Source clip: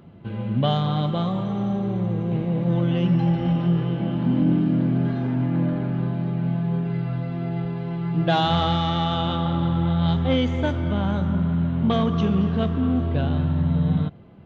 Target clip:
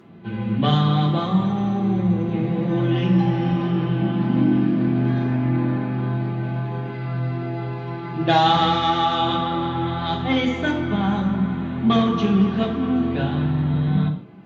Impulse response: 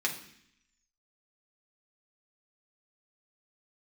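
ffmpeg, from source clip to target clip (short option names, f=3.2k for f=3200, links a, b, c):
-filter_complex "[1:a]atrim=start_sample=2205,afade=t=out:st=0.22:d=0.01,atrim=end_sample=10143[a];[0:a][a]afir=irnorm=-1:irlink=0,volume=-1dB" -ar 48000 -c:a libvorbis -b:a 64k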